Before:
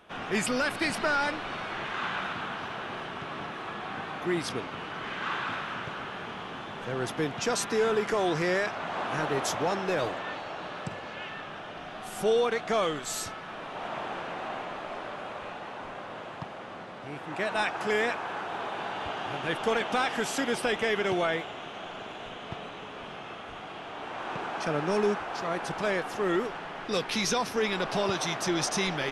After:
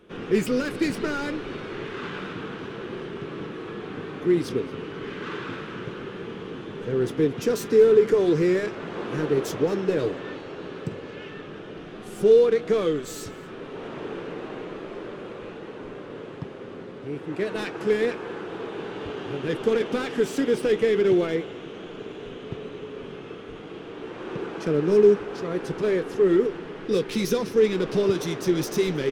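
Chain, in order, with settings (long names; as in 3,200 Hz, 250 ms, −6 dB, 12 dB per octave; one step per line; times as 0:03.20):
phase distortion by the signal itself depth 0.061 ms
flanger 0.33 Hz, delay 5.6 ms, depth 2.1 ms, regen −68%
gain into a clipping stage and back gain 23.5 dB
low shelf with overshoot 550 Hz +8 dB, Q 3
single-tap delay 227 ms −22 dB
level +1.5 dB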